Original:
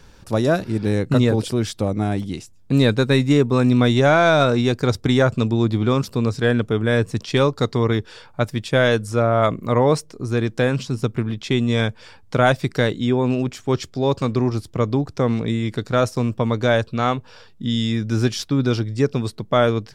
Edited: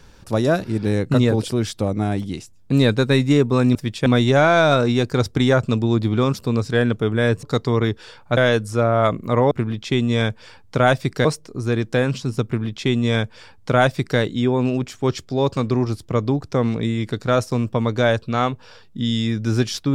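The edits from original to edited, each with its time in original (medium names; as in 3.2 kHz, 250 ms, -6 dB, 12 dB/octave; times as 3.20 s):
7.12–7.51 s: delete
8.45–8.76 s: move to 3.75 s
11.10–12.84 s: copy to 9.90 s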